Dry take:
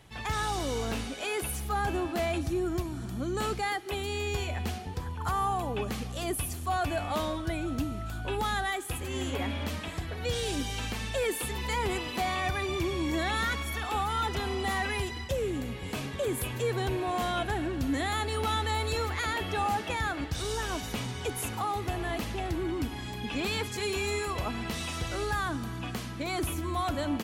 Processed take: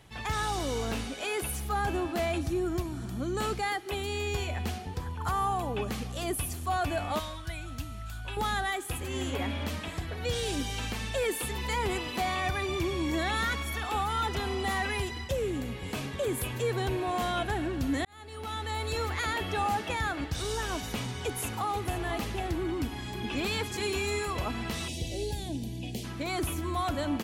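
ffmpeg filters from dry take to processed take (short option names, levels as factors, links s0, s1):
-filter_complex "[0:a]asettb=1/sr,asplit=3[s0][s1][s2];[s0]atrim=end=7.194[s3];[s1]atrim=start=7.19:end=8.37,asetpts=PTS-STARTPTS,afade=t=in:d=0.004:c=qsin,afade=t=out:st=1.176:d=0.004:c=qsin,equalizer=f=360:w=0.56:g=-15[s4];[s2]atrim=start=8.366[s5];[s3][s4]acrossfade=d=0.004:c1=hsin:c2=qsin[s6];[s6][s5]acrossfade=d=0.004:c1=qsin:c2=hsin,asplit=2[s7][s8];[s8]afade=t=in:st=21.19:d=0.01,afade=t=out:st=22.04:d=0.01,aecho=0:1:490|980|1470:0.251189|0.0627972|0.0156993[s9];[s7][s9]amix=inputs=2:normalize=0,asplit=2[s10][s11];[s11]afade=t=in:st=22.58:d=0.01,afade=t=out:st=23.32:d=0.01,aecho=0:1:560|1120|1680|2240|2800|3360|3920|4480|5040|5600|6160|6720:0.281838|0.225471|0.180377|0.144301|0.115441|0.0923528|0.0738822|0.0591058|0.0472846|0.0378277|0.0302622|0.0242097[s12];[s10][s12]amix=inputs=2:normalize=0,asplit=3[s13][s14][s15];[s13]afade=t=out:st=24.87:d=0.02[s16];[s14]asuperstop=centerf=1300:order=4:qfactor=0.63,afade=t=in:st=24.87:d=0.02,afade=t=out:st=26.03:d=0.02[s17];[s15]afade=t=in:st=26.03:d=0.02[s18];[s16][s17][s18]amix=inputs=3:normalize=0,asplit=2[s19][s20];[s19]atrim=end=18.05,asetpts=PTS-STARTPTS,afade=t=out:st=18.046:d=0.004:c=hsin[s21];[s20]atrim=start=18.05,asetpts=PTS-STARTPTS,afade=t=in:d=1.06[s22];[s21][s22]concat=n=2:v=0:a=1"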